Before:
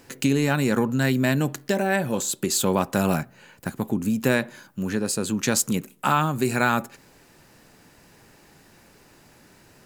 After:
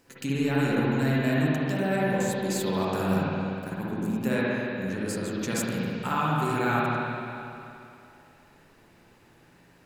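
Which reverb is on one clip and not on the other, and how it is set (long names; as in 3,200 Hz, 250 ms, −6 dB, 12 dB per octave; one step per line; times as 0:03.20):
spring reverb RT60 2.7 s, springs 52/58 ms, chirp 25 ms, DRR −7 dB
level −11 dB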